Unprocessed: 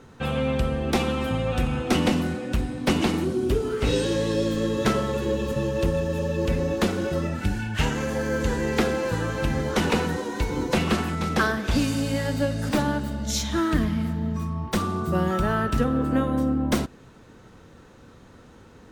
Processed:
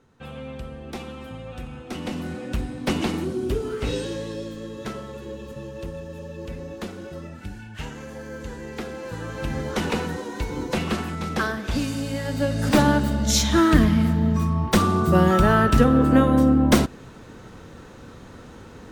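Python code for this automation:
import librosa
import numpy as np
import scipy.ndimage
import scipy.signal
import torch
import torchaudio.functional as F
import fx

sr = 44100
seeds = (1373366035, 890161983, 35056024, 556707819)

y = fx.gain(x, sr, db=fx.line((1.95, -11.5), (2.41, -2.0), (3.74, -2.0), (4.58, -10.5), (8.84, -10.5), (9.55, -2.5), (12.22, -2.5), (12.8, 6.5)))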